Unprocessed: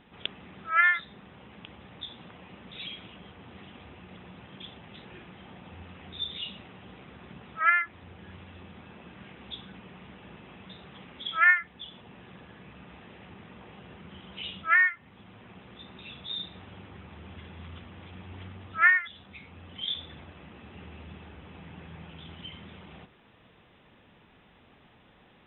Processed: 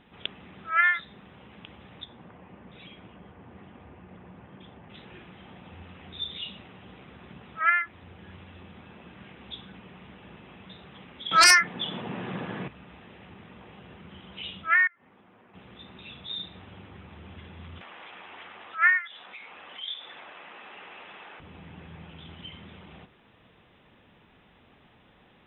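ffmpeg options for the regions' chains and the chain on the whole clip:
-filter_complex "[0:a]asettb=1/sr,asplit=3[a][b][c];[a]atrim=end=2.044[d];[b]atrim=start=2.04:end=4.9,asetpts=PTS-STARTPTS,afade=t=in:d=0.004:c=qsin,afade=t=out:st=2.856:d=0.004:c=qsin,lowpass=1.7k,bandreject=f=1.3k:w=26[e];[c]atrim=start=4.896[f];[d][e]acrossfade=d=0.004:c1=hsin:c2=qsin[g];[g][f]acrossfade=d=0.004:c1=qsin:c2=hsin,asettb=1/sr,asplit=3[h][i][j];[h]atrim=end=11.314[k];[i]atrim=start=11.31:end=12.68,asetpts=PTS-STARTPTS,afade=t=in:d=0.004:c=qsin,afade=t=out:st=1.366:d=0.004:c=qsin,highpass=f=120:w=0.5412,highpass=f=120:w=1.3066,highshelf=f=3k:g=-9.5,aeval=exprs='0.251*sin(PI/2*3.98*val(0)/0.251)':c=same[l];[j]atrim=start=12.676[m];[k][l]acrossfade=d=0.004:c1=hsin:c2=qsin[n];[n][m]acrossfade=d=0.004:c1=qsin:c2=hsin,asettb=1/sr,asplit=3[o][p][q];[o]atrim=end=14.874[r];[p]atrim=start=14.87:end=15.54,asetpts=PTS-STARTPTS,afade=t=in:d=0.004:c=qsin,afade=t=out:st=0.666:d=0.004:c=qsin,acrossover=split=210 2200:gain=0.2 1 0.224[s][t][u];[s][t][u]amix=inputs=3:normalize=0,acompressor=threshold=-53dB:ratio=6:attack=3.2:release=140:knee=1:detection=peak[v];[q]atrim=start=15.536[w];[r][v]acrossfade=d=0.004:c1=hsin:c2=qsin[x];[x][w]acrossfade=d=0.004:c1=qsin:c2=hsin,asettb=1/sr,asplit=3[y][z][aa];[y]atrim=end=17.814[ab];[z]atrim=start=17.81:end=21.4,asetpts=PTS-STARTPTS,afade=t=in:d=0.004:c=qsin,afade=t=out:st=3.586:d=0.004:c=qsin,highpass=720,lowpass=3.3k,acompressor=mode=upward:threshold=-35dB:ratio=2.5:attack=3.2:release=140:knee=2.83:detection=peak[ac];[aa]atrim=start=21.396[ad];[ab][ac]acrossfade=d=0.004:c1=hsin:c2=qsin[ae];[ae][ad]acrossfade=d=0.004:c1=qsin:c2=hsin"

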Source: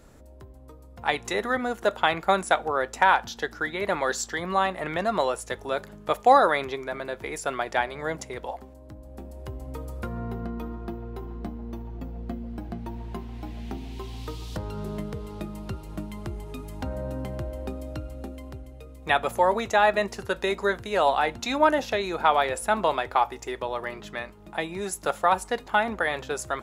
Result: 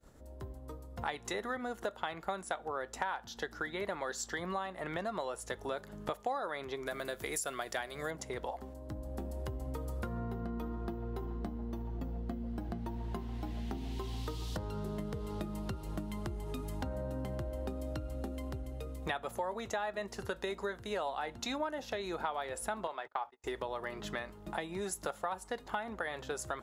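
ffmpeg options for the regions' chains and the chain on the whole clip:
-filter_complex "[0:a]asettb=1/sr,asplit=3[a][b][c];[a]atrim=end=6.864[d];[b]atrim=start=6.86:end=8.11,asetpts=PTS-STARTPTS,afade=t=in:d=0.004:c=qsin,afade=t=out:st=1.246:d=0.004:c=qsin,aemphasis=mode=production:type=75kf,bandreject=f=890:w=7.1[e];[c]atrim=start=8.106[f];[d][e]acrossfade=d=0.004:c1=hsin:c2=qsin[g];[g][f]acrossfade=d=0.004:c1=qsin:c2=hsin,asettb=1/sr,asplit=3[h][i][j];[h]atrim=end=22.874[k];[i]atrim=start=22.87:end=23.44,asetpts=PTS-STARTPTS,afade=t=in:d=0.004:c=qsin,afade=t=out:st=0.566:d=0.004:c=qsin,highpass=f=780:p=1,aemphasis=mode=reproduction:type=75kf,agate=range=-31dB:threshold=-41dB:ratio=16:release=100:detection=peak[l];[j]atrim=start=23.436[m];[k][l]acrossfade=d=0.004:c1=hsin:c2=qsin[n];[n][m]acrossfade=d=0.004:c1=qsin:c2=hsin,agate=range=-33dB:threshold=-44dB:ratio=3:detection=peak,equalizer=f=2.4k:w=5.5:g=-5,acompressor=threshold=-39dB:ratio=5,volume=3dB"

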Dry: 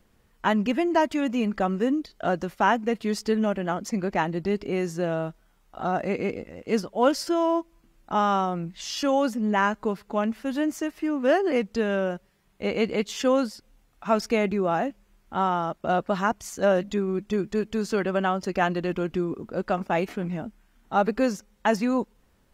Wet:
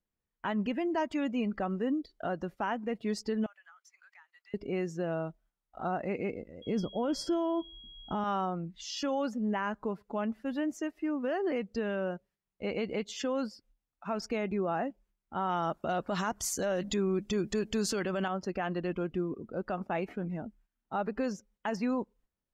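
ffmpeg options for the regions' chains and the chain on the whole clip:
-filter_complex "[0:a]asettb=1/sr,asplit=3[a][b][c];[a]atrim=end=3.464[d];[b]atrim=start=3.46:end=4.54,asetpts=PTS-STARTPTS,afade=t=in:d=0.004:c=qsin,afade=t=out:st=1.076:d=0.004:c=qsin,highpass=f=1.2k:w=0.5412,highpass=f=1.2k:w=1.3066,acompressor=threshold=-45dB:ratio=5:attack=3.2:release=140:knee=1:detection=peak[e];[c]atrim=start=4.536[f];[d][e]acrossfade=d=0.004:c1=hsin:c2=qsin[g];[g][f]acrossfade=d=0.004:c1=qsin:c2=hsin,asettb=1/sr,asplit=3[h][i][j];[h]atrim=end=6.624[k];[i]atrim=start=6.62:end=8.24,asetpts=PTS-STARTPTS,afade=t=in:d=0.004:c=qsin,afade=t=out:st=1.616:d=0.004:c=qsin,aeval=exprs='val(0)+0.00708*sin(2*PI*3300*n/s)':c=same,lowshelf=f=430:g=11.5[l];[j]atrim=start=8.236[m];[k][l]acrossfade=d=0.004:c1=hsin:c2=qsin[n];[n][m]acrossfade=d=0.004:c1=qsin:c2=hsin,asettb=1/sr,asplit=3[o][p][q];[o]atrim=end=15.494[r];[p]atrim=start=15.49:end=18.28,asetpts=PTS-STARTPTS,afade=t=in:d=0.004:c=qsin,afade=t=out:st=2.786:d=0.004:c=qsin,highshelf=f=3.4k:g=8,acontrast=69[s];[q]atrim=start=18.276[t];[r][s]acrossfade=d=0.004:c1=hsin:c2=qsin[u];[u][t]acrossfade=d=0.004:c1=qsin:c2=hsin,agate=range=-7dB:threshold=-54dB:ratio=16:detection=peak,afftdn=nr=14:nf=-42,alimiter=limit=-17dB:level=0:latency=1:release=74,volume=-6dB"

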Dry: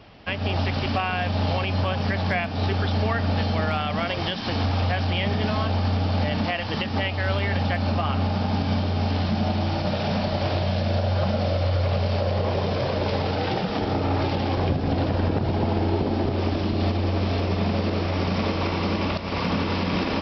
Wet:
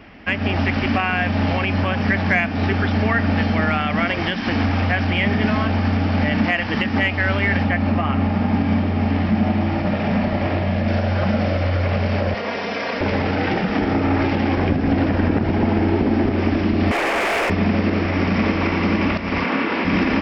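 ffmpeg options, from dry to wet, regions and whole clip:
-filter_complex "[0:a]asettb=1/sr,asplit=3[a][b][c];[a]atrim=end=7.644[d];[b]atrim=start=7.64:end=10.88,asetpts=PTS-STARTPTS,afade=t=in:d=0.004:c=qsin,afade=t=out:st=3.236:d=0.004:c=qsin,lowpass=f=2.6k:p=1,bandreject=f=1.5k:w=13[e];[c]atrim=start=10.876[f];[d][e]acrossfade=d=0.004:c1=hsin:c2=qsin[g];[g][f]acrossfade=d=0.004:c1=qsin:c2=hsin,asettb=1/sr,asplit=3[h][i][j];[h]atrim=end=12.344[k];[i]atrim=start=12.34:end=13.01,asetpts=PTS-STARTPTS,afade=t=in:d=0.004:c=qsin,afade=t=out:st=0.666:d=0.004:c=qsin,highpass=f=680:p=1,highshelf=f=5.1k:g=6.5,aecho=1:1:4.3:0.55,atrim=end_sample=29547[l];[j]atrim=start=13.006[m];[k][l]acrossfade=d=0.004:c1=hsin:c2=qsin[n];[n][m]acrossfade=d=0.004:c1=qsin:c2=hsin,asettb=1/sr,asplit=3[o][p][q];[o]atrim=end=16.914[r];[p]atrim=start=16.91:end=17.5,asetpts=PTS-STARTPTS,afade=t=in:d=0.004:c=qsin,afade=t=out:st=0.586:d=0.004:c=qsin,highpass=f=410:w=0.5412,highpass=f=410:w=1.3066,asplit=2[s][t];[t]highpass=f=720:p=1,volume=26dB,asoftclip=type=tanh:threshold=-17.5dB[u];[s][u]amix=inputs=2:normalize=0,lowpass=f=3.1k:p=1,volume=-6dB[v];[q]atrim=start=17.496[w];[r][v]acrossfade=d=0.004:c1=hsin:c2=qsin[x];[x][w]acrossfade=d=0.004:c1=qsin:c2=hsin,asettb=1/sr,asplit=3[y][z][aa];[y]atrim=end=19.444[ab];[z]atrim=start=19.44:end=19.85,asetpts=PTS-STARTPTS,afade=t=in:d=0.004:c=qsin,afade=t=out:st=0.406:d=0.004:c=qsin,highpass=290,lowpass=4.6k,asplit=2[ac][ad];[ad]adelay=30,volume=-5dB[ae];[ac][ae]amix=inputs=2:normalize=0,atrim=end_sample=18081[af];[aa]atrim=start=19.846[ag];[ab][af]acrossfade=d=0.004:c1=hsin:c2=qsin[ah];[ah][ag]acrossfade=d=0.004:c1=qsin:c2=hsin,equalizer=f=125:t=o:w=1:g=-7,equalizer=f=250:t=o:w=1:g=6,equalizer=f=500:t=o:w=1:g=-4,equalizer=f=1k:t=o:w=1:g=-3,equalizer=f=2k:t=o:w=1:g=8,equalizer=f=4k:t=o:w=1:g=-11,acontrast=47"

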